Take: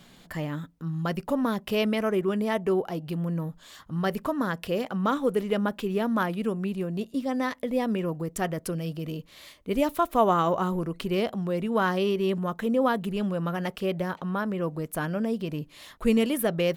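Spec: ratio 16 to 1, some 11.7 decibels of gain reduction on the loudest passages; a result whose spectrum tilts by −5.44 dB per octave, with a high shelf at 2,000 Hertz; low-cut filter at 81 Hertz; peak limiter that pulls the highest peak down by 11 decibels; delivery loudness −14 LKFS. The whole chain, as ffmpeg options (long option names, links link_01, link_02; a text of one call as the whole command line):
ffmpeg -i in.wav -af "highpass=81,highshelf=frequency=2000:gain=6,acompressor=threshold=-28dB:ratio=16,volume=20.5dB,alimiter=limit=-4.5dB:level=0:latency=1" out.wav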